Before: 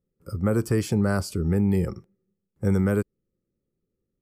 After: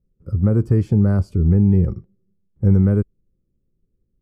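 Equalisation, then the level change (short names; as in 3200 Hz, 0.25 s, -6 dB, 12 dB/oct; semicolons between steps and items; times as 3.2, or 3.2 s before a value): tilt -4.5 dB/oct; -4.5 dB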